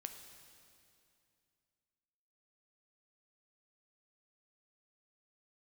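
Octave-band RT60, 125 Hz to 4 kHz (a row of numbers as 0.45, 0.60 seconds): 2.9, 2.9, 2.6, 2.4, 2.4, 2.3 seconds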